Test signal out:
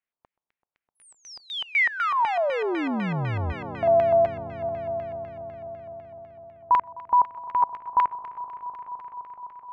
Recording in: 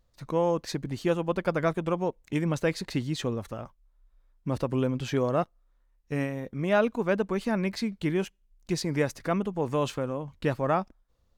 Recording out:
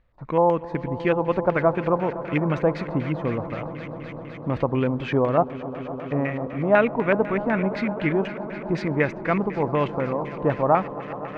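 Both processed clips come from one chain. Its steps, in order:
echo that builds up and dies away 128 ms, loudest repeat 5, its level −18 dB
auto-filter low-pass square 4 Hz 910–2,200 Hz
level +3.5 dB

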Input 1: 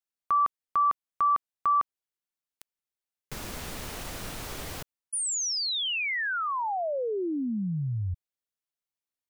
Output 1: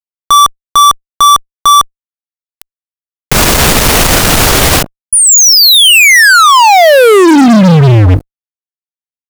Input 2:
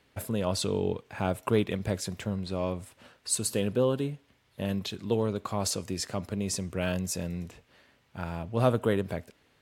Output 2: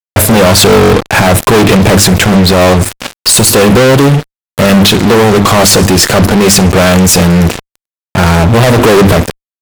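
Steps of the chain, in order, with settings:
mains-hum notches 50/100/150/200/250/300/350 Hz
fuzz pedal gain 45 dB, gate −49 dBFS
boost into a limiter +18 dB
level −1 dB

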